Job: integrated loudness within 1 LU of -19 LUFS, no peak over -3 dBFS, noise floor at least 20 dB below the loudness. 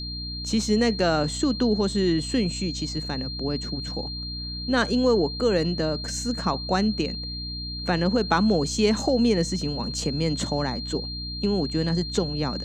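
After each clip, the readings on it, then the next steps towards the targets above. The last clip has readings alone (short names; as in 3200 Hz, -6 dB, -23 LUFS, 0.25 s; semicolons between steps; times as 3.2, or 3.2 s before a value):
hum 60 Hz; harmonics up to 300 Hz; hum level -33 dBFS; steady tone 4200 Hz; tone level -33 dBFS; loudness -25.0 LUFS; peak -6.0 dBFS; loudness target -19.0 LUFS
-> de-hum 60 Hz, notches 5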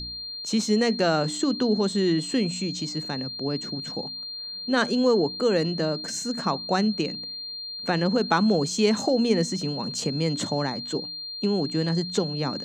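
hum none; steady tone 4200 Hz; tone level -33 dBFS
-> notch 4200 Hz, Q 30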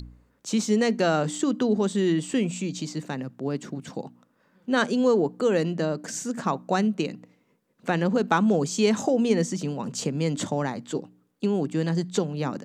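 steady tone none; loudness -25.5 LUFS; peak -6.5 dBFS; loudness target -19.0 LUFS
-> gain +6.5 dB; limiter -3 dBFS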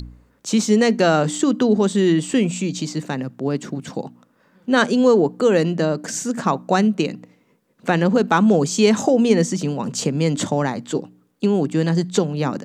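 loudness -19.0 LUFS; peak -3.0 dBFS; noise floor -61 dBFS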